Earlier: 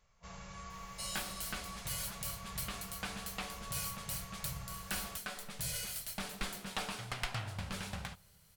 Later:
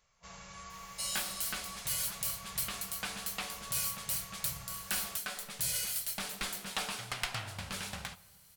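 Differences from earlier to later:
second sound: send +9.0 dB; master: add tilt +1.5 dB/oct

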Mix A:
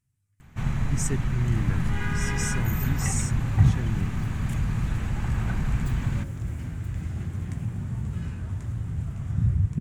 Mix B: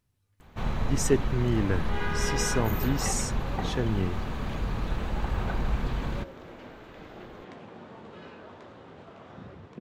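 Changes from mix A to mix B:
speech +6.5 dB; second sound: add BPF 340–4200 Hz; master: add graphic EQ 125/500/1000/2000/4000/8000 Hz -10/+9/+3/-4/+7/-10 dB

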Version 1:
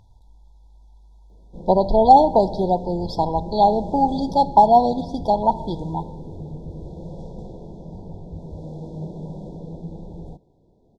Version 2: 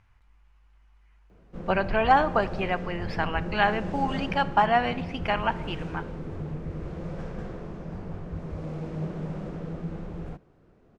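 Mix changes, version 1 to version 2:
speech -9.5 dB; master: remove brick-wall FIR band-stop 1000–3300 Hz

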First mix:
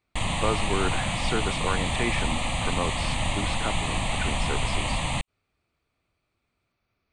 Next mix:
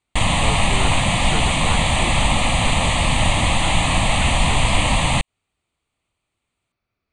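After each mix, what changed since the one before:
speech -3.0 dB; background +9.5 dB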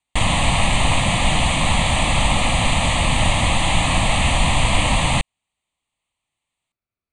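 speech -12.0 dB

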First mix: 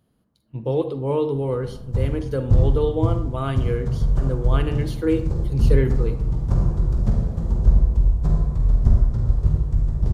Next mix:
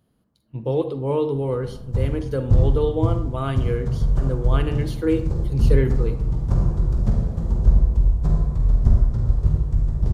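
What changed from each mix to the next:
none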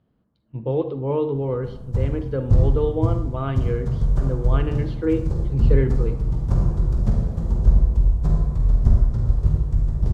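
speech: add air absorption 280 m

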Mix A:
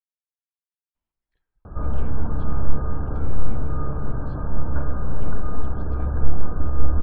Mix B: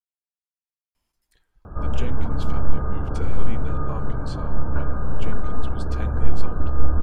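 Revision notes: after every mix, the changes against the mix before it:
speech +10.0 dB; master: remove air absorption 350 m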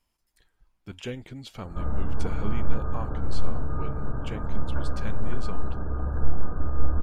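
speech: entry -0.95 s; background -4.5 dB

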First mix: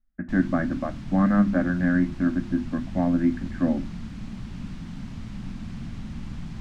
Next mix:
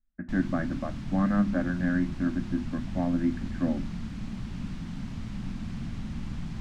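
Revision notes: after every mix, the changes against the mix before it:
speech -5.0 dB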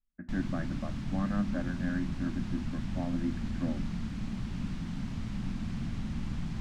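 speech -7.0 dB

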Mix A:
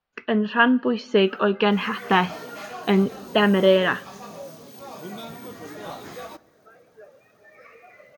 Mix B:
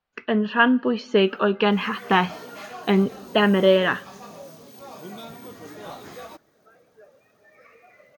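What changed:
first sound -4.0 dB; second sound: send off

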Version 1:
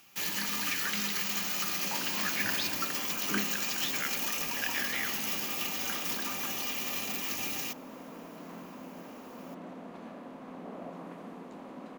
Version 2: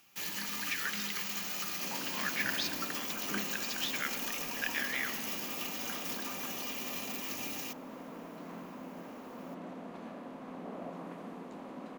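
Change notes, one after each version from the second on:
first sound -5.0 dB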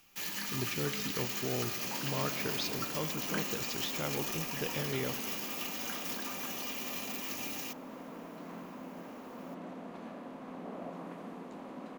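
speech: remove resonant high-pass 1700 Hz, resonance Q 4.8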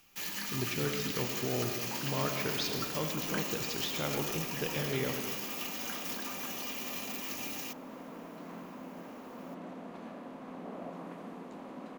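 speech: send +9.0 dB

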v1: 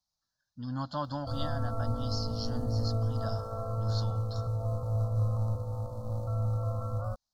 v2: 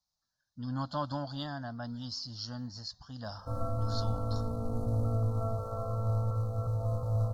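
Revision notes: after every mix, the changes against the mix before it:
background: entry +2.20 s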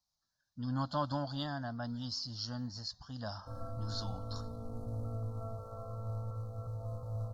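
background -9.0 dB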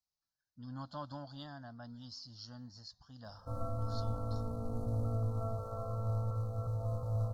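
speech -9.5 dB; background +4.5 dB

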